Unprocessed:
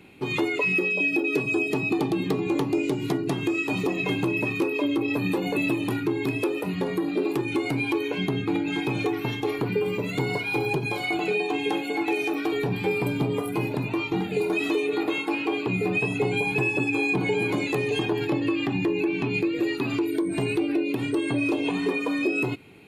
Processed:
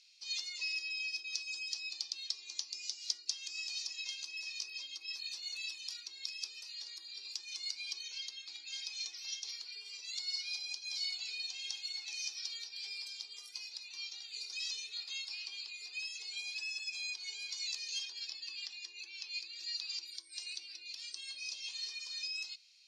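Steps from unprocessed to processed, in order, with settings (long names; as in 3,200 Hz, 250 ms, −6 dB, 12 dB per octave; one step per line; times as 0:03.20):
flat-topped band-pass 5,300 Hz, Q 3.5
level +13.5 dB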